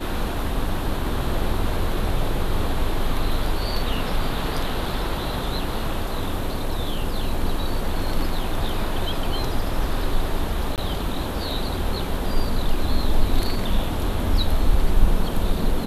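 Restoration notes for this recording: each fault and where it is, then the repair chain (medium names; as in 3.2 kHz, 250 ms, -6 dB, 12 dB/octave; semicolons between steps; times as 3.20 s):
10.76–10.78 s: dropout 18 ms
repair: interpolate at 10.76 s, 18 ms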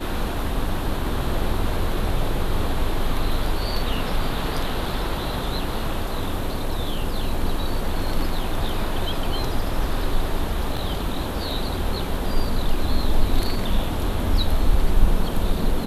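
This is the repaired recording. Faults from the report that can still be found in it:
nothing left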